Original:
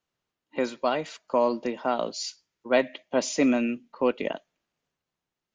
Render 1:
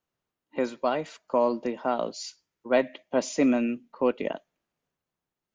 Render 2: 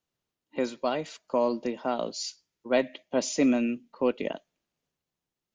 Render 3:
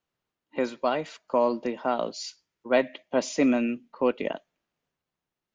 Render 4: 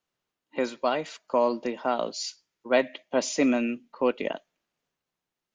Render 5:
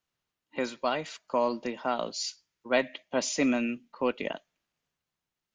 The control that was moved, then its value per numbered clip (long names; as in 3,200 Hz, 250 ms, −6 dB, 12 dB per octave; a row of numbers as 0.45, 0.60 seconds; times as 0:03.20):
parametric band, centre frequency: 4,200, 1,400, 12,000, 66, 410 Hertz